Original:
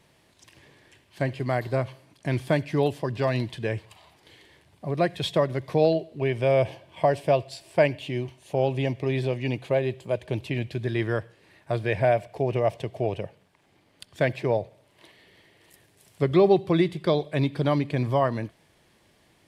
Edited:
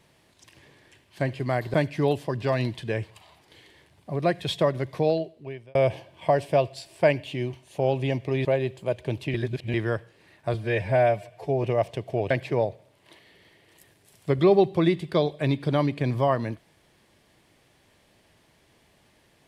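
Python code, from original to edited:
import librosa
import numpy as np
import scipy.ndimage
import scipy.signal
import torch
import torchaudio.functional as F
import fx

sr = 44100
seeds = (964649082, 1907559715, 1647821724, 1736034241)

y = fx.edit(x, sr, fx.cut(start_s=1.74, length_s=0.75),
    fx.fade_out_span(start_s=5.61, length_s=0.89),
    fx.cut(start_s=9.2, length_s=0.48),
    fx.reverse_span(start_s=10.57, length_s=0.4),
    fx.stretch_span(start_s=11.77, length_s=0.73, factor=1.5),
    fx.cut(start_s=13.17, length_s=1.06), tone=tone)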